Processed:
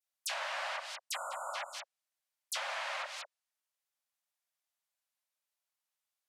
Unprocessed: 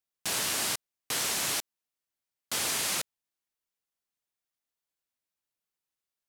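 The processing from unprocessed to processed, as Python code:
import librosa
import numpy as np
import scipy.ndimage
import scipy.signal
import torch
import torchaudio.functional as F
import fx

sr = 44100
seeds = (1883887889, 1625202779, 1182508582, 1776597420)

p1 = fx.brickwall_highpass(x, sr, low_hz=520.0)
p2 = fx.spec_erase(p1, sr, start_s=1.13, length_s=0.4, low_hz=1500.0, high_hz=6800.0)
p3 = fx.dispersion(p2, sr, late='lows', ms=48.0, hz=2800.0)
p4 = p3 + fx.echo_single(p3, sr, ms=192, db=-9.5, dry=0)
y = fx.env_lowpass_down(p4, sr, base_hz=2000.0, full_db=-27.5)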